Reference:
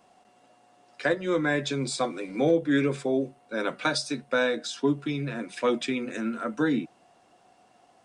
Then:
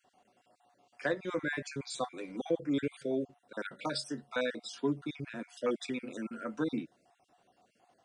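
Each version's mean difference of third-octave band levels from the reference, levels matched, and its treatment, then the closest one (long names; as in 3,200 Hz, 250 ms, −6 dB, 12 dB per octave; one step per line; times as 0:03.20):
3.5 dB: time-frequency cells dropped at random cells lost 34%
level −7 dB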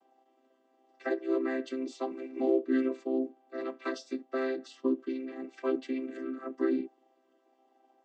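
8.0 dB: channel vocoder with a chord as carrier major triad, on C4
level −4.5 dB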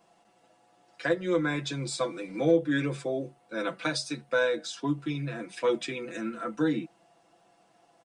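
1.5 dB: comb filter 6 ms, depth 73%
level −4.5 dB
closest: third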